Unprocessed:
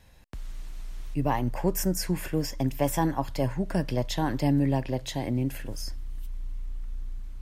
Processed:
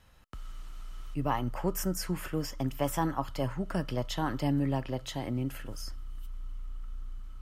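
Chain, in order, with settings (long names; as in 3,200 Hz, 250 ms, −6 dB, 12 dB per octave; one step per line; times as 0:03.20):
parametric band 1,200 Hz +5 dB 0.57 octaves
hollow resonant body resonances 1,300/3,000 Hz, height 13 dB, ringing for 35 ms
level −5 dB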